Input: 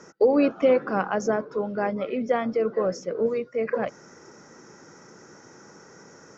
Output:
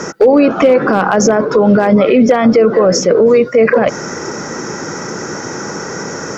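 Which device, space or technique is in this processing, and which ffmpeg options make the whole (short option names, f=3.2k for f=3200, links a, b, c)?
loud club master: -af "acompressor=threshold=-24dB:ratio=2,asoftclip=type=hard:threshold=-17dB,alimiter=level_in=27dB:limit=-1dB:release=50:level=0:latency=1,volume=-1dB"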